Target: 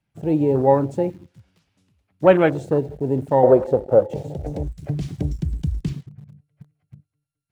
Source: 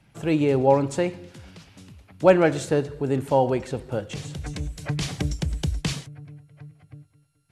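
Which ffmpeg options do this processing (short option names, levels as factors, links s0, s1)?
-filter_complex "[0:a]asettb=1/sr,asplit=3[s0][s1][s2];[s0]atrim=end=5.894[s3];[s1]atrim=start=5.89:end=6.3,asetpts=PTS-STARTPTS,afade=t=in:d=0.004:c=qsin,afade=t=out:st=0.406:d=0.004:c=qsin,aemphasis=mode=reproduction:type=50fm[s4];[s2]atrim=start=6.296[s5];[s3][s4]acrossfade=d=0.004:c1=hsin:c2=qsin[s6];[s6][s5]acrossfade=d=0.004:c1=qsin:c2=hsin,asplit=2[s7][s8];[s8]acrusher=bits=5:mix=0:aa=0.000001,volume=0.562[s9];[s7][s9]amix=inputs=2:normalize=0,asettb=1/sr,asplit=3[s10][s11][s12];[s10]atrim=end=3.434[s13];[s11]atrim=start=3.43:end=4.68,asetpts=PTS-STARTPTS,afade=t=in:d=0.004:c=qsin,afade=t=out:st=1.246:d=0.004:c=qsin,equalizer=f=560:w=1.3:g=14[s14];[s12]atrim=start=4.676[s15];[s13][s14]acrossfade=d=0.004:c1=hsin:c2=qsin[s16];[s16][s15]acrossfade=d=0.004:c1=qsin:c2=hsin,afwtdn=0.0631,volume=0.841"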